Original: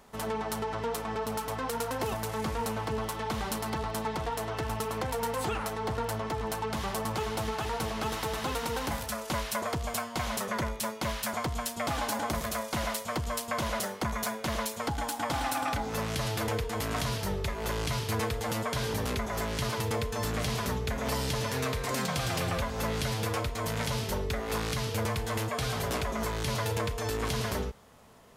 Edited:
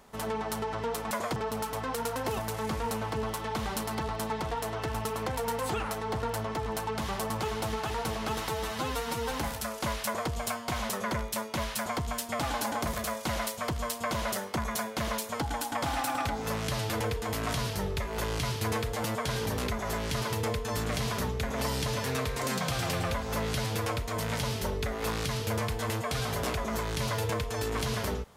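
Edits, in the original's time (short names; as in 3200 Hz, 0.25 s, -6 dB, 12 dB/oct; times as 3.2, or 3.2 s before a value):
8.24–8.79 stretch 1.5×
9.53–9.78 copy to 1.11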